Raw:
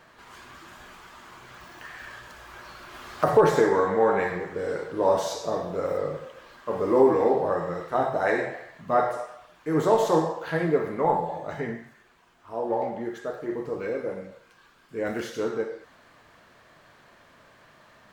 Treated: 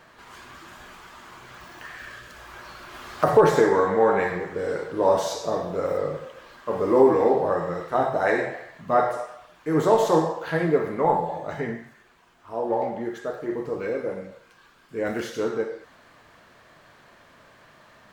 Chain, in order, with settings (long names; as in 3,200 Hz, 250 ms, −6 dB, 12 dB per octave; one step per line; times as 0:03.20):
0:01.93–0:02.34: parametric band 870 Hz −3.5 dB → −14.5 dB 0.38 octaves
level +2 dB